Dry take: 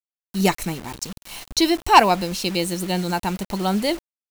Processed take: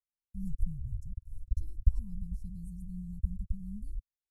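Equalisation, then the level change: inverse Chebyshev band-stop 370–3500 Hz, stop band 70 dB; tape spacing loss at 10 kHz 36 dB; +10.5 dB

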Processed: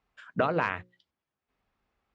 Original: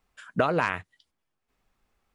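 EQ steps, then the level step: Gaussian low-pass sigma 1.6 samples; high-pass 43 Hz; hum notches 60/120/180/240/300/360/420/480/540 Hz; -2.0 dB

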